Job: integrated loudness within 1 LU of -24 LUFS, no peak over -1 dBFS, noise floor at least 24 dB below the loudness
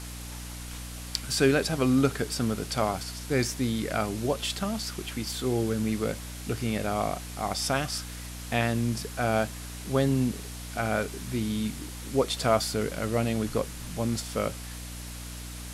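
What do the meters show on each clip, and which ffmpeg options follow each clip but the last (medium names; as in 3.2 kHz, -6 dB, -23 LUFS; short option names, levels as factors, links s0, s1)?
hum 60 Hz; highest harmonic 300 Hz; hum level -38 dBFS; noise floor -39 dBFS; noise floor target -53 dBFS; loudness -29.0 LUFS; peak level -8.5 dBFS; loudness target -24.0 LUFS
-> -af "bandreject=f=60:t=h:w=4,bandreject=f=120:t=h:w=4,bandreject=f=180:t=h:w=4,bandreject=f=240:t=h:w=4,bandreject=f=300:t=h:w=4"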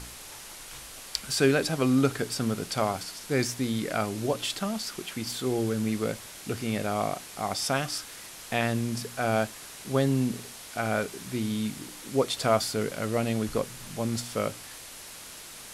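hum not found; noise floor -44 dBFS; noise floor target -53 dBFS
-> -af "afftdn=nr=9:nf=-44"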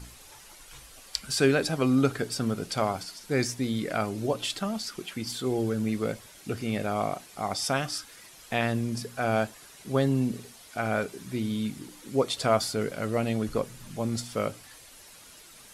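noise floor -51 dBFS; noise floor target -53 dBFS
-> -af "afftdn=nr=6:nf=-51"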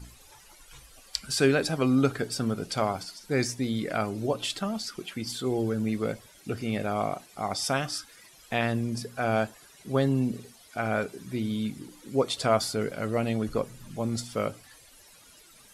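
noise floor -55 dBFS; loudness -29.5 LUFS; peak level -8.5 dBFS; loudness target -24.0 LUFS
-> -af "volume=1.88"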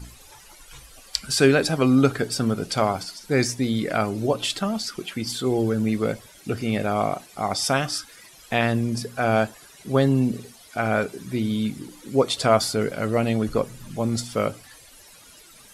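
loudness -24.0 LUFS; peak level -3.0 dBFS; noise floor -49 dBFS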